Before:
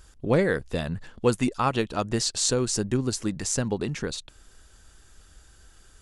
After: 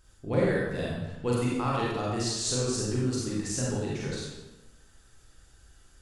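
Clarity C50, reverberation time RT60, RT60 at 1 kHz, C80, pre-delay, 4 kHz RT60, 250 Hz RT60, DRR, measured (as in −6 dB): −2.0 dB, 1.0 s, 0.95 s, 1.5 dB, 33 ms, 0.80 s, 1.2 s, −6.0 dB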